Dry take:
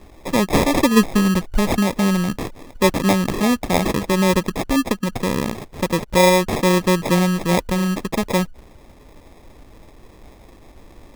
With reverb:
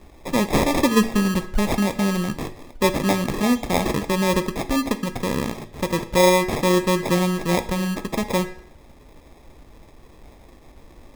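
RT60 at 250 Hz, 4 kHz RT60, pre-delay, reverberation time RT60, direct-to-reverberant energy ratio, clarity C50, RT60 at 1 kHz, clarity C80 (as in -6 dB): 0.65 s, 0.55 s, 8 ms, 0.60 s, 9.0 dB, 14.0 dB, 0.60 s, 17.0 dB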